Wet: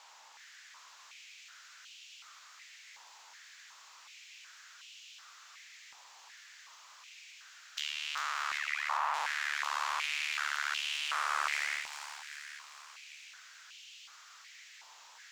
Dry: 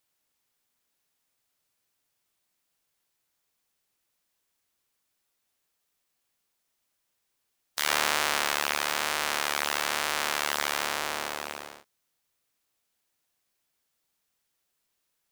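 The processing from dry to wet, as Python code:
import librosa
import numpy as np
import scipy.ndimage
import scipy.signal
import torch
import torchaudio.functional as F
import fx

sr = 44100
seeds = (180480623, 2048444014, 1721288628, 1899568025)

y = fx.envelope_sharpen(x, sr, power=3.0, at=(8.57, 9.14))
y = scipy.signal.sosfilt(scipy.signal.butter(12, 7400.0, 'lowpass', fs=sr, output='sos'), y)
y = fx.over_compress(y, sr, threshold_db=-40.0, ratio=-1.0)
y = np.clip(y, -10.0 ** (-25.0 / 20.0), 10.0 ** (-25.0 / 20.0))
y = fx.power_curve(y, sr, exponent=0.7)
y = fx.echo_wet_highpass(y, sr, ms=395, feedback_pct=54, hz=2400.0, wet_db=-3.5)
y = fx.filter_held_highpass(y, sr, hz=2.7, low_hz=900.0, high_hz=2800.0)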